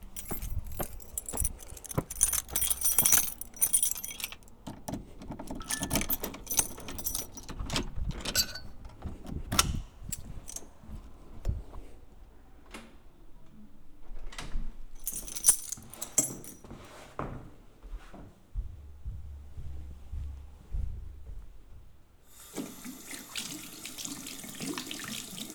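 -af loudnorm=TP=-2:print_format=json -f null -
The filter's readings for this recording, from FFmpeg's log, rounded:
"input_i" : "-31.7",
"input_tp" : "-5.9",
"input_lra" : "18.2",
"input_thresh" : "-43.5",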